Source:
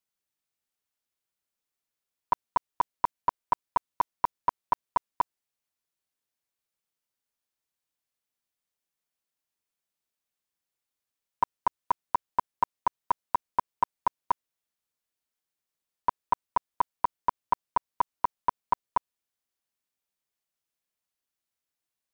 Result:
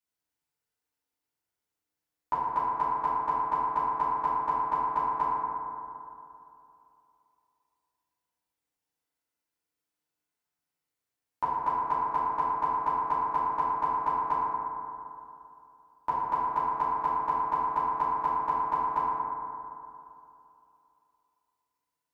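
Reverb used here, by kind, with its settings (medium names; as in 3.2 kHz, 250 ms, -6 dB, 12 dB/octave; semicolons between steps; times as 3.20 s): FDN reverb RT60 2.8 s, high-frequency decay 0.3×, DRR -8.5 dB; trim -7 dB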